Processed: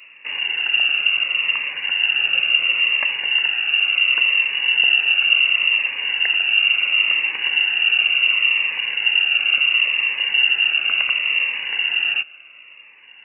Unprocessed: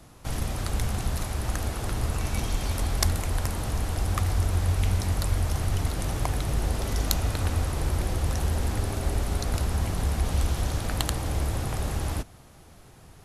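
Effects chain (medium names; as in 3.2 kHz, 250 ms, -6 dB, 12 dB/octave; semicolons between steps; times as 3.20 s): frequency inversion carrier 2.8 kHz; high-pass 670 Hz 6 dB/octave; Shepard-style phaser falling 0.71 Hz; trim +8 dB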